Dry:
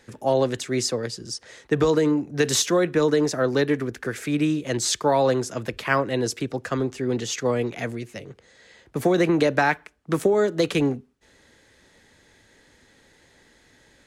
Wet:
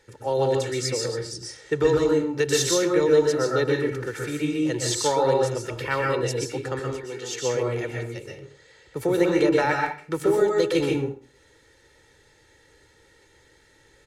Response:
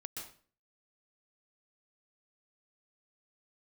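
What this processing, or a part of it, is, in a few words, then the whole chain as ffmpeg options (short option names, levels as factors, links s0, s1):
microphone above a desk: -filter_complex "[0:a]asettb=1/sr,asplit=3[s0][s1][s2];[s0]atrim=end=6.794[s3];[s1]atrim=start=6.79:end=7.33,asetpts=PTS-STARTPTS,afade=t=in:d=0.004:c=qsin,afade=t=out:st=0.536:d=0.004:c=qsin,highpass=f=790:p=1[s4];[s2]atrim=start=7.326[s5];[s3][s4]acrossfade=d=0.004:c1=hsin:c2=qsin[s6];[s6][s5]acrossfade=d=0.004:c1=qsin:c2=hsin,aecho=1:1:2.2:0.64[s7];[1:a]atrim=start_sample=2205[s8];[s7][s8]afir=irnorm=-1:irlink=0"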